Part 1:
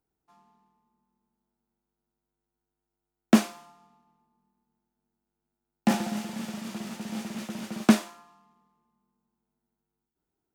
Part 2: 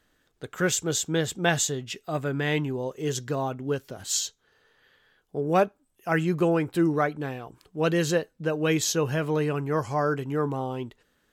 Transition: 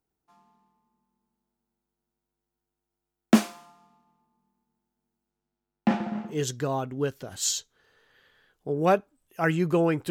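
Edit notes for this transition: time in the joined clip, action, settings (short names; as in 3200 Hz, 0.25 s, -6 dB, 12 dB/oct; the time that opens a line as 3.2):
part 1
5.3–6.38 LPF 9200 Hz -> 1000 Hz
6.31 switch to part 2 from 2.99 s, crossfade 0.14 s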